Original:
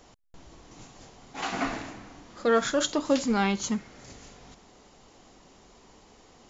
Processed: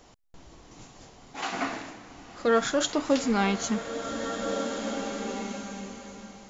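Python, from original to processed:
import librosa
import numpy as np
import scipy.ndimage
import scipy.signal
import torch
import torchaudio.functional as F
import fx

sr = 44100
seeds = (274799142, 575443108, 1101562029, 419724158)

y = fx.highpass(x, sr, hz=220.0, slope=6, at=(1.36, 2.09))
y = fx.rev_bloom(y, sr, seeds[0], attack_ms=1960, drr_db=5.5)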